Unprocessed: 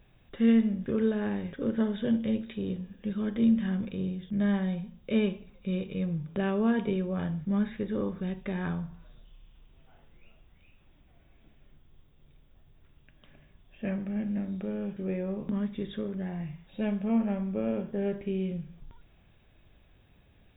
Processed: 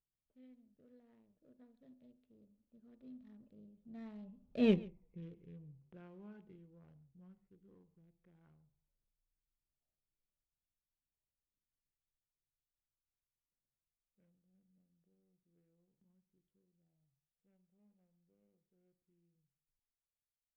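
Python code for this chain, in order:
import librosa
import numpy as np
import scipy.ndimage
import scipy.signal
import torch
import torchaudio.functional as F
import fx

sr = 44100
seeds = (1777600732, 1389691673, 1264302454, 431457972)

y = fx.wiener(x, sr, points=25)
y = fx.doppler_pass(y, sr, speed_mps=36, closest_m=2.0, pass_at_s=4.71)
y = y + 10.0 ** (-22.0 / 20.0) * np.pad(y, (int(139 * sr / 1000.0), 0))[:len(y)]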